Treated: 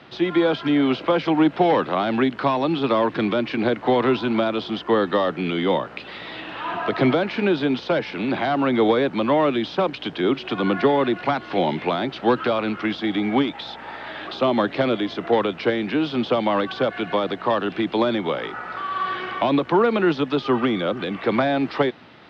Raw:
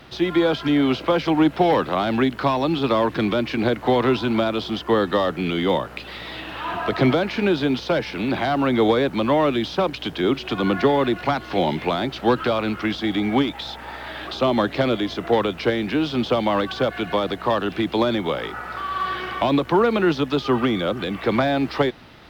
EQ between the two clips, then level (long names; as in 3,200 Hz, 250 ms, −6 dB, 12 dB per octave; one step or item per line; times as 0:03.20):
band-pass filter 140–4,000 Hz
0.0 dB